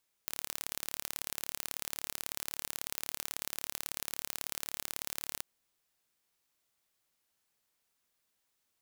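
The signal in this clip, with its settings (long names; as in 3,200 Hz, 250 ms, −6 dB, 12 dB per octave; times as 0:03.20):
impulse train 36.3 per second, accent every 2, −8 dBFS 5.13 s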